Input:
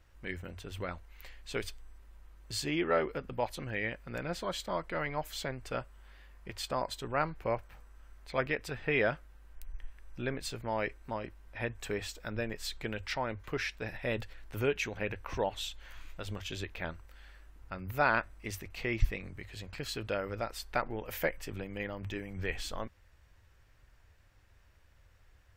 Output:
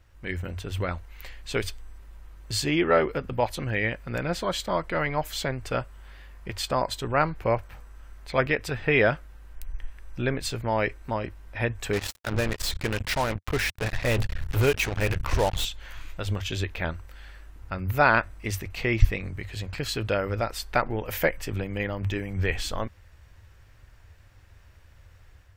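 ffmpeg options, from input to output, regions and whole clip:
-filter_complex "[0:a]asettb=1/sr,asplit=3[a][b][c];[a]atrim=end=11.934[d];[b]atrim=start=11.93:end=15.65,asetpts=PTS-STARTPTS,afade=t=in:d=0.004:c=qsin,afade=t=out:st=3.716:d=0.004:c=qsin,asubboost=boost=3.5:cutoff=100,acrusher=bits=5:mix=0:aa=0.5[e];[c]atrim=start=15.646[f];[d][e]acrossfade=d=0.004:c1=hsin:c2=qsin[g];[g][f]acrossfade=d=0.004:c1=qsin:c2=hsin,equalizer=f=92:w=1.5:g=5.5,dynaudnorm=f=110:g=5:m=5dB,volume=3dB"

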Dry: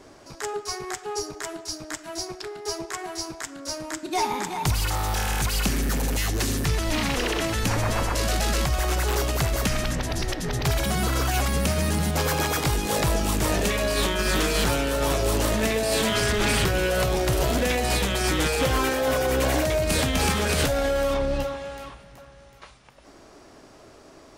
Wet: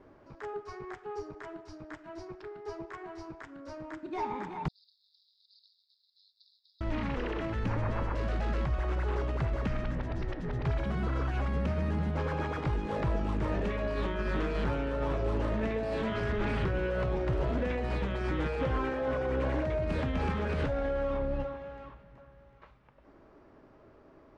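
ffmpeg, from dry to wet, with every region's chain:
-filter_complex "[0:a]asettb=1/sr,asplit=3[a][b][c];[a]atrim=end=4.684[d];[b]atrim=start=4.68:end=6.81,asetpts=PTS-STARTPTS,afade=t=in:d=0.004:c=qsin,afade=t=out:st=2.126:d=0.004:c=qsin,asuperpass=centerf=4400:order=12:qfactor=3,aeval=exprs='val(0)*sin(2*PI*100*n/s)':c=same[e];[c]atrim=start=6.806[f];[d][e]acrossfade=d=0.004:c1=hsin:c2=qsin[g];[g][f]acrossfade=d=0.004:c1=qsin:c2=hsin,lowpass=1.8k,lowshelf=f=330:g=3,bandreject=f=720:w=12,volume=-8.5dB"

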